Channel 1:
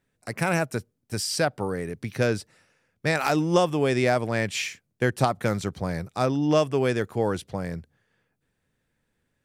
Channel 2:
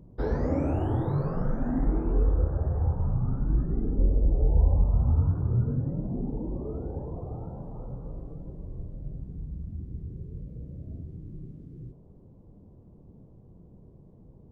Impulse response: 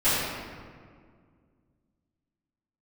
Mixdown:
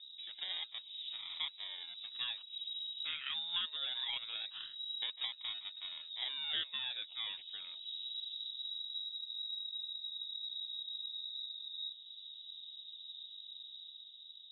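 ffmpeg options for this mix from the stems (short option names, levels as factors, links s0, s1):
-filter_complex "[0:a]acrusher=samples=26:mix=1:aa=0.000001:lfo=1:lforange=26:lforate=0.22,volume=0.141,asplit=2[s0][s1];[1:a]acompressor=threshold=0.0224:ratio=6,alimiter=level_in=4.73:limit=0.0631:level=0:latency=1:release=371,volume=0.211,dynaudnorm=f=260:g=7:m=1.58,volume=0.75[s2];[s1]apad=whole_len=640271[s3];[s2][s3]sidechaincompress=threshold=0.00141:ratio=8:attack=45:release=180[s4];[s0][s4]amix=inputs=2:normalize=0,lowpass=f=3300:t=q:w=0.5098,lowpass=f=3300:t=q:w=0.6013,lowpass=f=3300:t=q:w=0.9,lowpass=f=3300:t=q:w=2.563,afreqshift=-3900"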